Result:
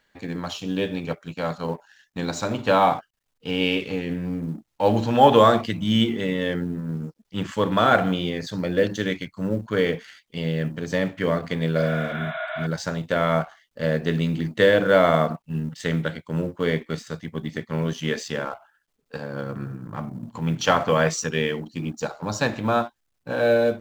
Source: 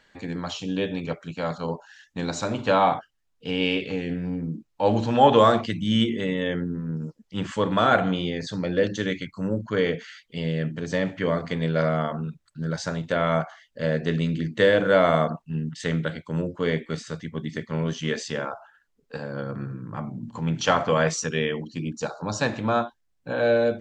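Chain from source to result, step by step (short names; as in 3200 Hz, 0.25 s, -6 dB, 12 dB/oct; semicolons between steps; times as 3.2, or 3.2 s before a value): G.711 law mismatch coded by A; spectral repair 11.8–12.64, 620–4000 Hz before; gain +2 dB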